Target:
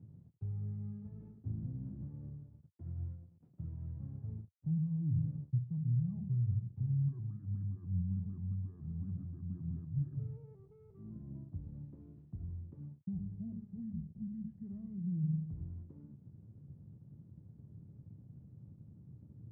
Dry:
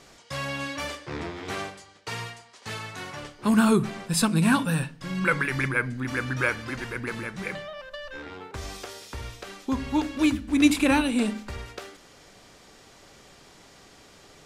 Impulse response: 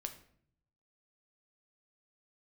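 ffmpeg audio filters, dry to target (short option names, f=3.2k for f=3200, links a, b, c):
-af "areverse,acompressor=threshold=-34dB:ratio=12,areverse,alimiter=level_in=11dB:limit=-24dB:level=0:latency=1:release=225,volume=-11dB,aeval=exprs='val(0)*gte(abs(val(0)),0.00299)':c=same,asuperpass=centerf=160:order=4:qfactor=1.5,asetrate=32667,aresample=44100,volume=12.5dB"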